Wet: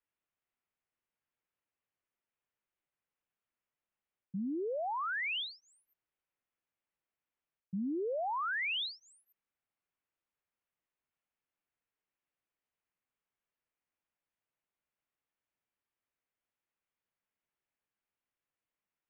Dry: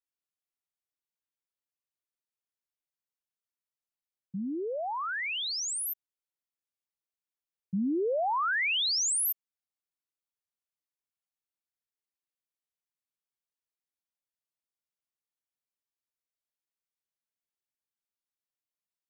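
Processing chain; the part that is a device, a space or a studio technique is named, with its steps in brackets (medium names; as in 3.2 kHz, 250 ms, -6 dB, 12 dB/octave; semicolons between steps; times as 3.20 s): inverse Chebyshev low-pass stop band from 5.4 kHz, stop band 40 dB; compression on the reversed sound (reverse; compression, threshold -41 dBFS, peak gain reduction 12.5 dB; reverse); trim +6 dB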